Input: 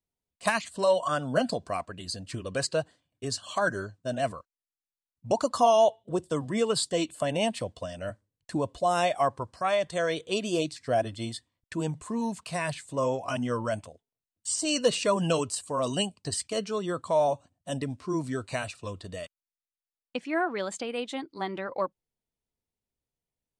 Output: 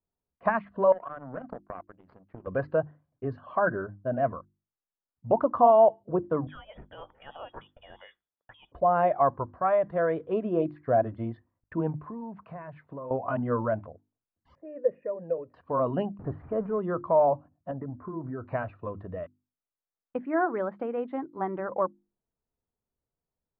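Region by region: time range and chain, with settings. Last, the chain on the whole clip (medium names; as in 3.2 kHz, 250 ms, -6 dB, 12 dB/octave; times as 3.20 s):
0.92–2.47 s: high-pass 130 Hz + compression, threshold -29 dBFS + power-law waveshaper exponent 2
6.47–8.72 s: frequency inversion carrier 3.5 kHz + compression 12:1, threshold -30 dBFS
12.00–13.11 s: high-pass 84 Hz + compression 8:1, threshold -38 dBFS
14.55–15.54 s: cascade formant filter e + treble shelf 2.9 kHz -6.5 dB
16.19–16.79 s: jump at every zero crossing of -36 dBFS + tape spacing loss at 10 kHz 44 dB
17.71–18.43 s: low-pass 1.8 kHz 24 dB/octave + compression 5:1, threshold -34 dBFS
whole clip: inverse Chebyshev low-pass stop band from 7.9 kHz, stop band 80 dB; hum notches 50/100/150/200/250/300/350 Hz; trim +2.5 dB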